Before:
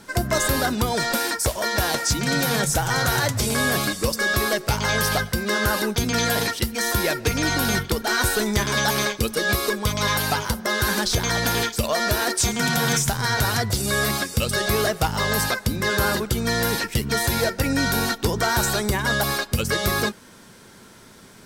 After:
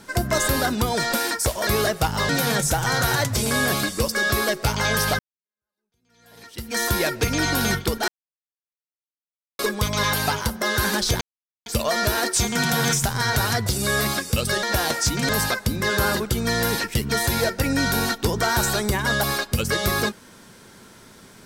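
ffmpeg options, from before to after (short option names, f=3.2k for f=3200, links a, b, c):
-filter_complex "[0:a]asplit=10[a][b][c][d][e][f][g][h][i][j];[a]atrim=end=1.672[k];[b]atrim=start=14.668:end=15.292[l];[c]atrim=start=2.328:end=5.23,asetpts=PTS-STARTPTS,afade=t=out:st=2.898:d=0.004:c=hsin[m];[d]atrim=start=5.23:end=8.12,asetpts=PTS-STARTPTS,afade=t=in:d=1.56:c=exp,afade=t=out:st=2.886:d=0.004:c=hsin[n];[e]atrim=start=8.12:end=9.63,asetpts=PTS-STARTPTS,volume=0[o];[f]atrim=start=9.63:end=11.25,asetpts=PTS-STARTPTS,afade=t=in:d=0.004:c=hsin,afade=t=out:st=1.616:d=0.004:c=hsin[p];[g]atrim=start=11.25:end=11.7,asetpts=PTS-STARTPTS,volume=0[q];[h]atrim=start=11.7:end=14.672,asetpts=PTS-STARTPTS,afade=t=in:d=0.004:c=hsin[r];[i]atrim=start=1.668:end=2.332[s];[j]atrim=start=15.288[t];[k][l]acrossfade=d=0.004:c1=hsin:c2=hsin[u];[m][n][o][p][q][r]concat=n=6:v=0:a=1[v];[u][v]acrossfade=d=0.004:c1=hsin:c2=hsin[w];[w][s]acrossfade=d=0.004:c1=hsin:c2=hsin[x];[x][t]acrossfade=d=0.004:c1=hsin:c2=hsin"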